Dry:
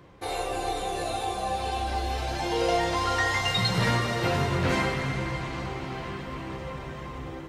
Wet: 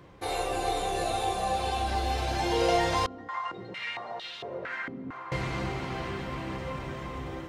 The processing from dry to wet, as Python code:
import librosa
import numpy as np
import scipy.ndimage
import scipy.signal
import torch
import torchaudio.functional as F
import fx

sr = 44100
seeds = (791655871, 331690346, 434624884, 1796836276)

y = x + 10.0 ** (-10.0 / 20.0) * np.pad(x, (int(420 * sr / 1000.0), 0))[:len(x)]
y = fx.filter_held_bandpass(y, sr, hz=4.4, low_hz=250.0, high_hz=3500.0, at=(3.06, 5.32))